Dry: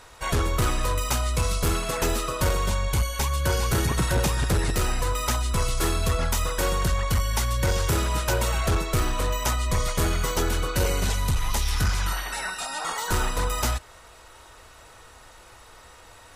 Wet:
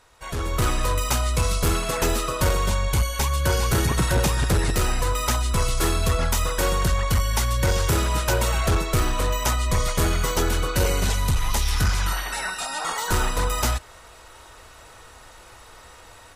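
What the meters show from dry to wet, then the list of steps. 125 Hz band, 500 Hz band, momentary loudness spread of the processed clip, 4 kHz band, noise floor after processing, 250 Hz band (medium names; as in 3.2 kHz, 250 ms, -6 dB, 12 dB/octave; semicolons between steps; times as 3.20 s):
+2.0 dB, +2.0 dB, 3 LU, +2.0 dB, -47 dBFS, +2.0 dB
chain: level rider gain up to 11 dB; trim -8.5 dB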